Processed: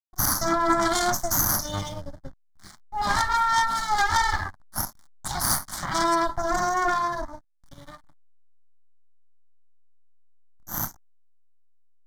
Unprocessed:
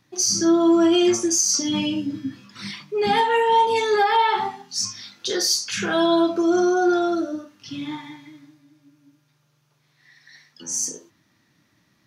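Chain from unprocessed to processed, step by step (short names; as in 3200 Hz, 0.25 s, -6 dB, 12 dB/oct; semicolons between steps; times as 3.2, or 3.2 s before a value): added harmonics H 3 -8 dB, 4 -7 dB, 5 -19 dB, 7 -29 dB, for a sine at -10 dBFS; backlash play -40 dBFS; fixed phaser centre 1100 Hz, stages 4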